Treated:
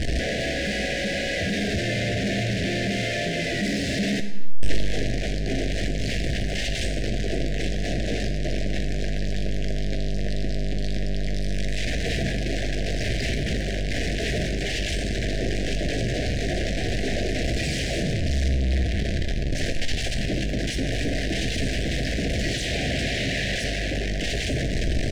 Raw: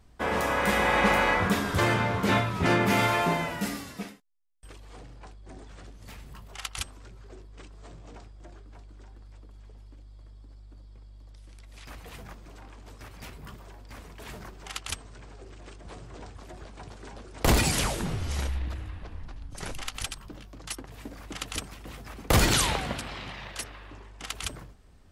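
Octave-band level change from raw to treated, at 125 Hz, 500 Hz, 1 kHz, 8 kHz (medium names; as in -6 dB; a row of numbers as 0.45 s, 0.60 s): +7.5 dB, +5.0 dB, -8.0 dB, +0.5 dB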